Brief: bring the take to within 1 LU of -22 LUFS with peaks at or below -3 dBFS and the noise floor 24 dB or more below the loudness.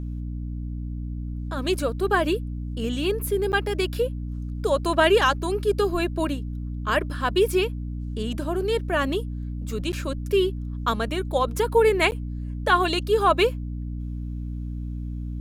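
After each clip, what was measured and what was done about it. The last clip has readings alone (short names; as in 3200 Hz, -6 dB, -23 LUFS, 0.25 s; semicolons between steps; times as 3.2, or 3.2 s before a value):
dropouts 3; longest dropout 9.8 ms; hum 60 Hz; harmonics up to 300 Hz; hum level -28 dBFS; loudness -25.0 LUFS; peak -6.5 dBFS; loudness target -22.0 LUFS
-> interpolate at 3.52/9.92/12.11, 9.8 ms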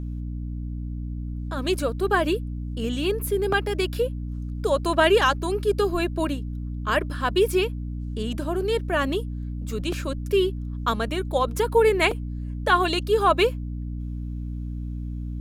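dropouts 0; hum 60 Hz; harmonics up to 300 Hz; hum level -28 dBFS
-> notches 60/120/180/240/300 Hz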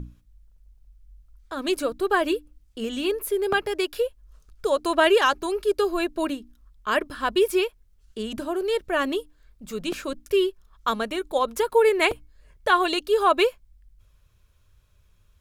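hum none; loudness -24.5 LUFS; peak -6.0 dBFS; loudness target -22.0 LUFS
-> gain +2.5 dB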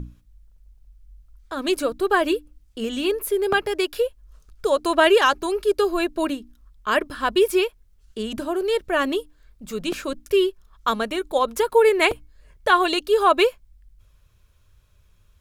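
loudness -22.0 LUFS; peak -3.5 dBFS; noise floor -58 dBFS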